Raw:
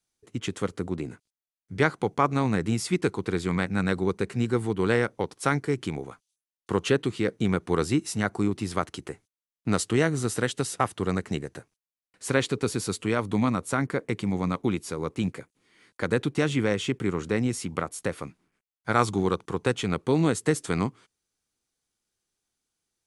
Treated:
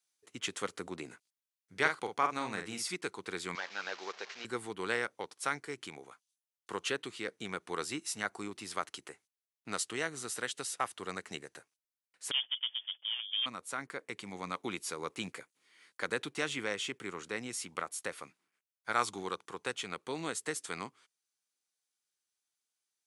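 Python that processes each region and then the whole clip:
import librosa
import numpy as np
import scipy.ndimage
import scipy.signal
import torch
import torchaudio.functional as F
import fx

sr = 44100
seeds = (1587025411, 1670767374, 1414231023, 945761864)

y = fx.chain(x, sr, fx.notch(hz=7300.0, q=19.0),
    fx.doubler(ms=47.0, db=-6.5), at=(1.79, 2.93))
y = fx.chain(y, sr, fx.delta_mod(bps=32000, step_db=-37.0),
    fx.highpass(hz=560.0, slope=12), at=(3.55, 4.45))
y = fx.chain(y, sr, fx.median_filter(points=41),
    fx.freq_invert(carrier_hz=3400), at=(12.31, 13.46))
y = fx.highpass(y, sr, hz=1300.0, slope=6)
y = fx.rider(y, sr, range_db=10, speed_s=2.0)
y = F.gain(torch.from_numpy(y), -6.0).numpy()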